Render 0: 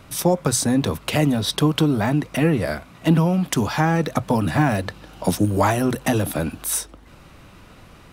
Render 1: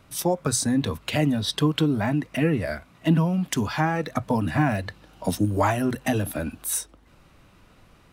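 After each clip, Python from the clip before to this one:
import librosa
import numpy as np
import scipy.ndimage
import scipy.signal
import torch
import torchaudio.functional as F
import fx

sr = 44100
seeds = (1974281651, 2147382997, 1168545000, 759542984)

y = fx.noise_reduce_blind(x, sr, reduce_db=6)
y = F.gain(torch.from_numpy(y), -3.0).numpy()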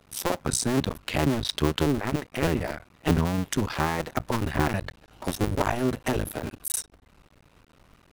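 y = fx.cycle_switch(x, sr, every=2, mode='muted')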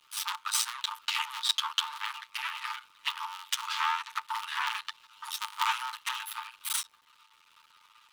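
y = fx.lower_of_two(x, sr, delay_ms=9.1)
y = scipy.signal.sosfilt(scipy.signal.cheby1(6, 9, 870.0, 'highpass', fs=sr, output='sos'), y)
y = fx.dmg_crackle(y, sr, seeds[0], per_s=110.0, level_db=-61.0)
y = F.gain(torch.from_numpy(y), 7.5).numpy()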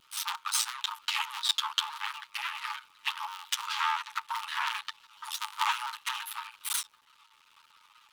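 y = fx.vibrato_shape(x, sr, shape='saw_down', rate_hz=5.8, depth_cents=100.0)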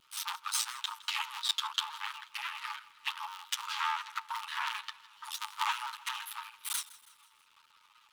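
y = fx.echo_feedback(x, sr, ms=162, feedback_pct=50, wet_db=-19.5)
y = F.gain(torch.from_numpy(y), -3.5).numpy()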